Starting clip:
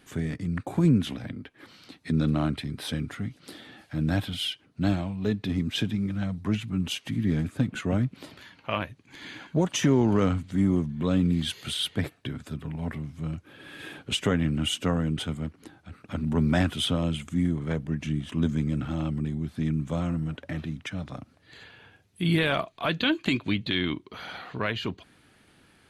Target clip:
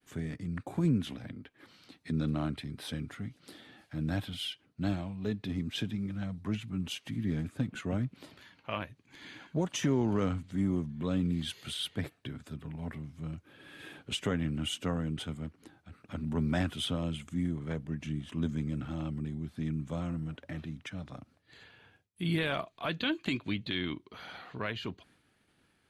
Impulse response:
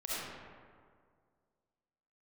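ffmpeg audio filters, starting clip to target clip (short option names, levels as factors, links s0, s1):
-af "agate=range=0.0224:threshold=0.002:ratio=3:detection=peak,volume=0.447"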